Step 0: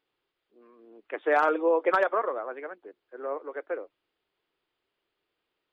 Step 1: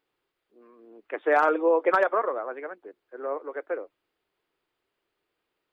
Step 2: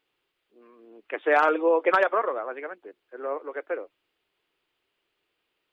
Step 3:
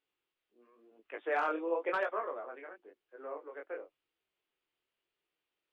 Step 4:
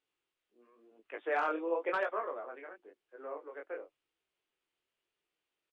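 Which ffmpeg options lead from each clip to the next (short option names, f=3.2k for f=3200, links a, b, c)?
-af "equalizer=f=3.3k:w=1.9:g=-4,volume=2dB"
-af "equalizer=f=2.9k:t=o:w=0.98:g=8"
-af "flanger=delay=18:depth=7.4:speed=0.95,volume=-8.5dB"
-af "aresample=22050,aresample=44100"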